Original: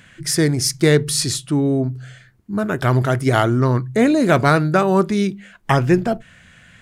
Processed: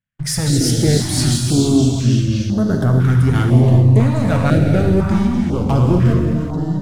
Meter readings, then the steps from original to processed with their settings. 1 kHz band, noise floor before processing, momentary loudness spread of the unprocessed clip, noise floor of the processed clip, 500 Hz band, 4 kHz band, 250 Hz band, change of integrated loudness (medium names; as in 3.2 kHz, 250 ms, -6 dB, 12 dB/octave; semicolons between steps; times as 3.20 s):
-5.0 dB, -50 dBFS, 10 LU, -24 dBFS, -2.0 dB, +1.0 dB, +3.5 dB, +3.0 dB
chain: gate -39 dBFS, range -35 dB; bass shelf 480 Hz +10.5 dB; compression 1.5:1, threshold -25 dBFS, peak gain reduction 8.5 dB; waveshaping leveller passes 2; ever faster or slower copies 126 ms, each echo -4 st, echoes 2, each echo -6 dB; gated-style reverb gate 420 ms flat, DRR 1 dB; step-sequenced notch 2 Hz 350–2400 Hz; trim -5.5 dB